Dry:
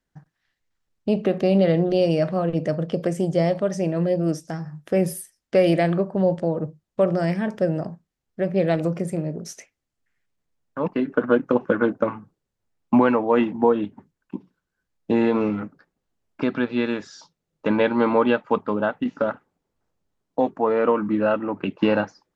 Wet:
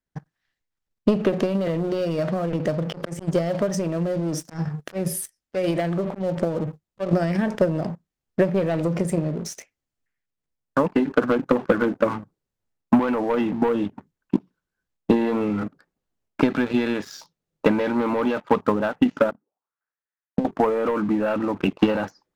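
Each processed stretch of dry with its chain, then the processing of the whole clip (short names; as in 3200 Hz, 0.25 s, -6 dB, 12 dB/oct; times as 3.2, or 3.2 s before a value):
1.42–7.13 compressor 3:1, threshold -28 dBFS + auto swell 0.174 s + sample leveller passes 1
19.3–20.45 bell 1400 Hz +2.5 dB 2.4 oct + auto-wah 200–1800 Hz, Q 4.2, down, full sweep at -33 dBFS
whole clip: sample leveller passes 2; limiter -11.5 dBFS; transient shaper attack +11 dB, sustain +7 dB; gain -6.5 dB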